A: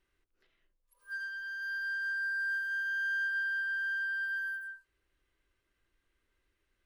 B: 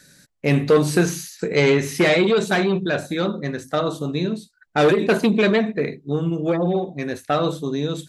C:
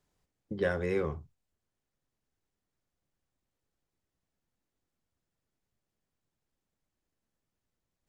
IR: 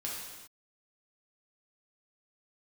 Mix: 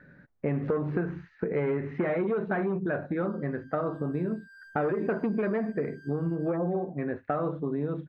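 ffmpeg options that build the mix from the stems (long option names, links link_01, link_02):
-filter_complex "[0:a]highpass=frequency=1000:width=0.5412,highpass=frequency=1000:width=1.3066,highshelf=frequency=2100:gain=-3.5,asoftclip=type=hard:threshold=-34.5dB,adelay=2100,volume=-15dB[link_01];[1:a]lowpass=frequency=1700:width=0.5412,lowpass=frequency=1700:width=1.3066,acompressor=threshold=-19dB:ratio=2.5,volume=1.5dB,asplit=2[link_02][link_03];[2:a]equalizer=frequency=10000:width_type=o:width=2.6:gain=-15,asoftclip=type=tanh:threshold=-29.5dB,volume=-2.5dB[link_04];[link_03]apad=whole_len=356668[link_05];[link_04][link_05]sidechaincompress=threshold=-24dB:ratio=8:attack=16:release=460[link_06];[link_01][link_02][link_06]amix=inputs=3:normalize=0,acompressor=threshold=-32dB:ratio=2"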